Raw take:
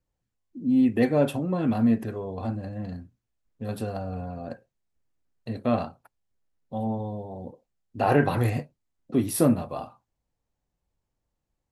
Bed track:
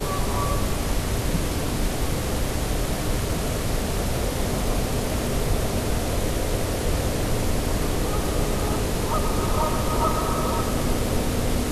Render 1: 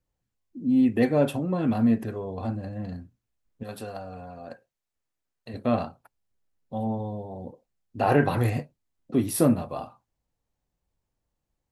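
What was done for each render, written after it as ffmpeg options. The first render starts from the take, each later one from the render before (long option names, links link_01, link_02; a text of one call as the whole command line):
ffmpeg -i in.wav -filter_complex "[0:a]asettb=1/sr,asplit=3[link_01][link_02][link_03];[link_01]atrim=end=3.634[link_04];[link_02]atrim=start=3.63:end=5.54,asetpts=PTS-STARTPTS,afade=type=in:duration=0.004:curve=qsin,afade=type=out:start_time=1.906:duration=0.004:curve=qsin,lowshelf=frequency=380:gain=-11[link_05];[link_03]atrim=start=5.536[link_06];[link_04][link_05]acrossfade=duration=0.004:curve1=hsin:curve2=qsin[link_07];[link_07][link_06]acrossfade=duration=0.004:curve1=qsin:curve2=hsin" out.wav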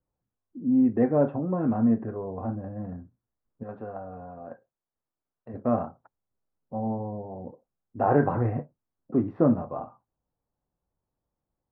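ffmpeg -i in.wav -af "lowpass=frequency=1400:width=0.5412,lowpass=frequency=1400:width=1.3066,lowshelf=frequency=68:gain=-8.5" out.wav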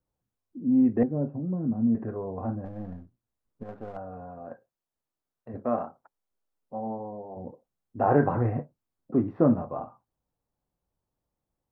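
ffmpeg -i in.wav -filter_complex "[0:a]asettb=1/sr,asplit=3[link_01][link_02][link_03];[link_01]atrim=end=1.034[link_04];[link_02]atrim=start=1.03:end=1.95,asetpts=PTS-STARTPTS,afade=type=in:duration=0.004:curve=qsin,afade=type=out:start_time=0.916:duration=0.004:curve=qsin,bandpass=frequency=170:width_type=q:width=1.2[link_05];[link_03]atrim=start=1.946[link_06];[link_04][link_05]acrossfade=duration=0.004:curve1=hsin:curve2=qsin[link_07];[link_07][link_06]acrossfade=duration=0.004:curve1=qsin:curve2=hsin,asettb=1/sr,asplit=3[link_08][link_09][link_10];[link_08]atrim=end=2.654[link_11];[link_09]atrim=start=2.65:end=3.97,asetpts=PTS-STARTPTS,afade=type=in:duration=0.004:curve=qsin,afade=type=out:start_time=1.316:duration=0.004:curve=qsin,aeval=exprs='if(lt(val(0),0),0.447*val(0),val(0))':channel_layout=same[link_12];[link_10]atrim=start=3.966[link_13];[link_11][link_12]acrossfade=duration=0.004:curve1=hsin:curve2=qsin[link_14];[link_14][link_13]acrossfade=duration=0.004:curve1=qsin:curve2=hsin,asettb=1/sr,asplit=3[link_15][link_16][link_17];[link_15]atrim=end=5.654[link_18];[link_16]atrim=start=5.65:end=7.37,asetpts=PTS-STARTPTS,afade=type=in:duration=0.004:curve=qsin,afade=type=out:start_time=1.716:duration=0.004:curve=qsin,equalizer=frequency=97:width_type=o:width=2.1:gain=-13[link_19];[link_17]atrim=start=7.366[link_20];[link_18][link_19]acrossfade=duration=0.004:curve1=hsin:curve2=qsin[link_21];[link_21][link_20]acrossfade=duration=0.004:curve1=qsin:curve2=hsin" out.wav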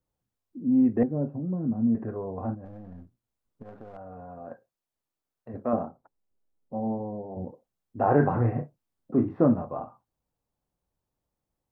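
ffmpeg -i in.wav -filter_complex "[0:a]asettb=1/sr,asplit=3[link_01][link_02][link_03];[link_01]atrim=end=2.544[link_04];[link_02]atrim=start=2.54:end=4.31,asetpts=PTS-STARTPTS,afade=type=in:duration=0.004:curve=qsin,afade=type=out:start_time=1.766:duration=0.004:curve=qsin,acompressor=threshold=-38dB:ratio=10:attack=3.2:release=140:knee=1:detection=peak[link_05];[link_03]atrim=start=4.306[link_06];[link_04][link_05]acrossfade=duration=0.004:curve1=hsin:curve2=qsin[link_07];[link_07][link_06]acrossfade=duration=0.004:curve1=qsin:curve2=hsin,asettb=1/sr,asplit=3[link_08][link_09][link_10];[link_08]atrim=end=5.734[link_11];[link_09]atrim=start=5.73:end=7.45,asetpts=PTS-STARTPTS,afade=type=in:duration=0.004:curve=qsin,afade=type=out:start_time=1.716:duration=0.004:curve=qsin,tiltshelf=frequency=680:gain=8[link_12];[link_10]atrim=start=7.446[link_13];[link_11][link_12]acrossfade=duration=0.004:curve1=hsin:curve2=qsin[link_14];[link_14][link_13]acrossfade=duration=0.004:curve1=qsin:curve2=hsin,asettb=1/sr,asplit=3[link_15][link_16][link_17];[link_15]atrim=end=8.164[link_18];[link_16]atrim=start=8.16:end=9.45,asetpts=PTS-STARTPTS,afade=type=in:duration=0.004:curve=qsin,afade=type=out:start_time=1.286:duration=0.004:curve=qsin,asplit=2[link_19][link_20];[link_20]adelay=34,volume=-8dB[link_21];[link_19][link_21]amix=inputs=2:normalize=0,atrim=end_sample=56889[link_22];[link_17]atrim=start=9.446[link_23];[link_18][link_22]acrossfade=duration=0.004:curve1=hsin:curve2=qsin[link_24];[link_24][link_23]acrossfade=duration=0.004:curve1=qsin:curve2=hsin" out.wav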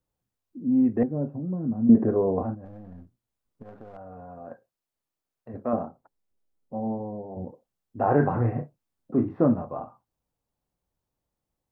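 ffmpeg -i in.wav -filter_complex "[0:a]asettb=1/sr,asplit=3[link_01][link_02][link_03];[link_01]atrim=end=1.894[link_04];[link_02]atrim=start=1.89:end=2.43,asetpts=PTS-STARTPTS,afade=type=in:duration=0.004:curve=qsin,afade=type=out:start_time=0.536:duration=0.004:curve=qsin,equalizer=frequency=350:width=0.39:gain=12[link_05];[link_03]atrim=start=2.426[link_06];[link_04][link_05]acrossfade=duration=0.004:curve1=hsin:curve2=qsin[link_07];[link_07][link_06]acrossfade=duration=0.004:curve1=qsin:curve2=hsin" out.wav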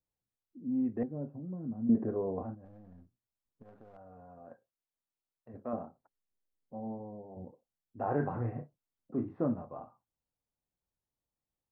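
ffmpeg -i in.wav -af "volume=-10.5dB" out.wav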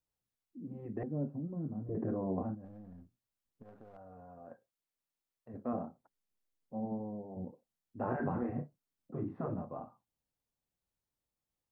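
ffmpeg -i in.wav -af "afftfilt=real='re*lt(hypot(re,im),0.141)':imag='im*lt(hypot(re,im),0.141)':win_size=1024:overlap=0.75,adynamicequalizer=threshold=0.002:dfrequency=210:dqfactor=1.1:tfrequency=210:tqfactor=1.1:attack=5:release=100:ratio=0.375:range=3:mode=boostabove:tftype=bell" out.wav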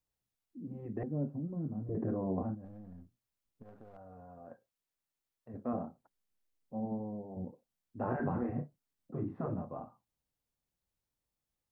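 ffmpeg -i in.wav -af "lowshelf=frequency=120:gain=4" out.wav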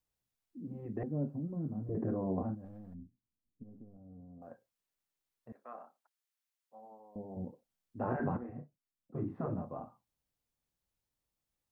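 ffmpeg -i in.wav -filter_complex "[0:a]asettb=1/sr,asplit=3[link_01][link_02][link_03];[link_01]atrim=end=2.944[link_04];[link_02]atrim=start=2.94:end=4.42,asetpts=PTS-STARTPTS,afade=type=in:duration=0.004:curve=qsin,afade=type=out:start_time=1.476:duration=0.004:curve=qsin,lowpass=frequency=260:width_type=q:width=2[link_05];[link_03]atrim=start=4.416[link_06];[link_04][link_05]acrossfade=duration=0.004:curve1=hsin:curve2=qsin[link_07];[link_07][link_06]acrossfade=duration=0.004:curve1=qsin:curve2=hsin,asettb=1/sr,asplit=3[link_08][link_09][link_10];[link_08]atrim=end=5.524[link_11];[link_09]atrim=start=5.52:end=7.16,asetpts=PTS-STARTPTS,afade=type=in:duration=0.004:curve=qsin,afade=type=out:start_time=1.636:duration=0.004:curve=qsin,highpass=1100[link_12];[link_10]atrim=start=7.156[link_13];[link_11][link_12]acrossfade=duration=0.004:curve1=hsin:curve2=qsin[link_14];[link_14][link_13]acrossfade=duration=0.004:curve1=qsin:curve2=hsin,asplit=3[link_15][link_16][link_17];[link_15]atrim=end=8.372[link_18];[link_16]atrim=start=8.368:end=9.152,asetpts=PTS-STARTPTS,volume=-9dB[link_19];[link_17]atrim=start=9.148[link_20];[link_18][link_19]acrossfade=duration=0.004:curve1=hsin:curve2=hsin[link_21];[link_21][link_20]acrossfade=duration=0.004:curve1=hsin:curve2=hsin" out.wav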